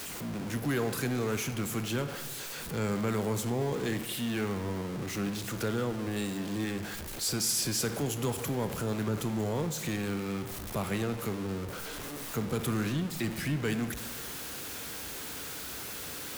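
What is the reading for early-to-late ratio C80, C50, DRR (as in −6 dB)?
12.0 dB, 10.5 dB, 9.0 dB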